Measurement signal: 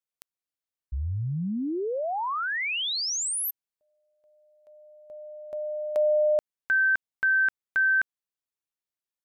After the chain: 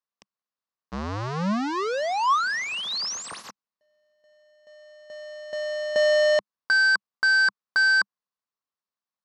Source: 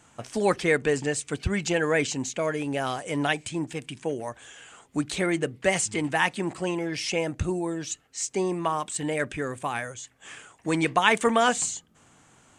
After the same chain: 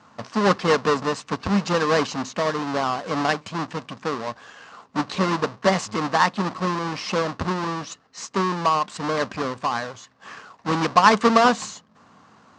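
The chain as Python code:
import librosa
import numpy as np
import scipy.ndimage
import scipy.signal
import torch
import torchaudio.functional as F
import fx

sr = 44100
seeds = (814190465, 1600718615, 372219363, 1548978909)

y = fx.halfwave_hold(x, sr)
y = fx.cabinet(y, sr, low_hz=120.0, low_slope=12, high_hz=5600.0, hz=(140.0, 200.0, 340.0, 1100.0, 2300.0, 3300.0), db=(-6, 5, -6, 9, -5, -5))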